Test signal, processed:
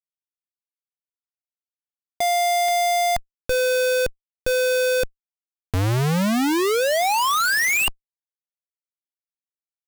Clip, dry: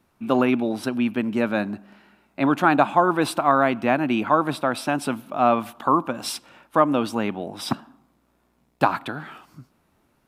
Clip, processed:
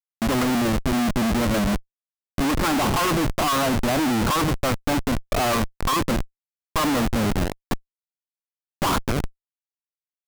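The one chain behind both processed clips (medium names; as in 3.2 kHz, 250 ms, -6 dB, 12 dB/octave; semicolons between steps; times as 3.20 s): low-pass 2.2 kHz 24 dB/octave; dynamic bell 1.1 kHz, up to +7 dB, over -37 dBFS, Q 6.9; Schmitt trigger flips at -29 dBFS; trim +1.5 dB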